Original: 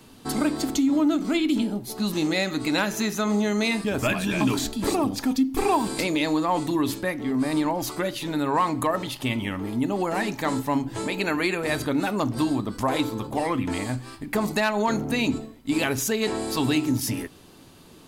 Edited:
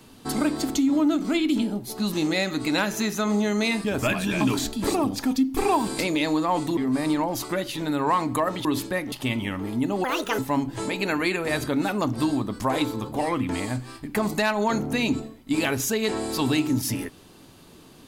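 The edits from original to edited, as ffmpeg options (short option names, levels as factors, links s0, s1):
-filter_complex "[0:a]asplit=6[s0][s1][s2][s3][s4][s5];[s0]atrim=end=6.772[s6];[s1]atrim=start=7.238:end=9.122[s7];[s2]atrim=start=6.768:end=7.242[s8];[s3]atrim=start=9.118:end=10.044[s9];[s4]atrim=start=10.04:end=10.57,asetpts=PTS-STARTPTS,asetrate=67473,aresample=44100,atrim=end_sample=15276,asetpts=PTS-STARTPTS[s10];[s5]atrim=start=10.566[s11];[s6][s7]acrossfade=d=0.004:c1=hsin:c2=hsin[s12];[s12][s8]acrossfade=d=0.004:c1=hsin:c2=hsin[s13];[s13][s9]acrossfade=d=0.004:c1=hsin:c2=hsin[s14];[s14][s10]acrossfade=d=0.004:c1=hsin:c2=hsin[s15];[s15][s11]acrossfade=d=0.004:c1=hsin:c2=hsin"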